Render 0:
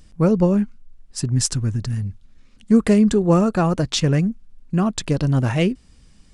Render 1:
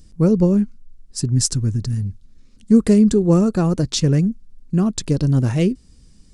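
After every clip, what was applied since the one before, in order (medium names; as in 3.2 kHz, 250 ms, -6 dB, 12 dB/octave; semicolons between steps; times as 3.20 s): high-order bell 1.4 kHz -8 dB 2.8 oct; trim +2 dB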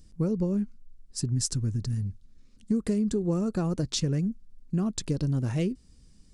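compression 6:1, threshold -16 dBFS, peak gain reduction 8.5 dB; trim -7 dB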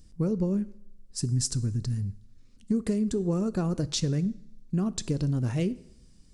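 two-slope reverb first 0.7 s, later 1.9 s, from -25 dB, DRR 15.5 dB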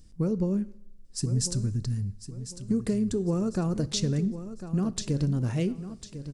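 feedback delay 1050 ms, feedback 33%, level -12 dB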